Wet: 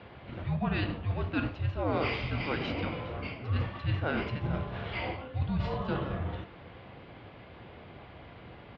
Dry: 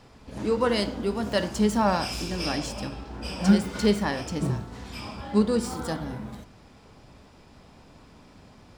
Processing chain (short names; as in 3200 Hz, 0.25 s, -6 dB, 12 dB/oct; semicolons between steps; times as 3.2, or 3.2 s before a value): de-hum 149.4 Hz, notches 34; mistuned SSB -300 Hz 170–3600 Hz; reverse; compressor 12:1, threshold -33 dBFS, peak gain reduction 20 dB; reverse; HPF 75 Hz; echo 0.413 s -21.5 dB; gain +7 dB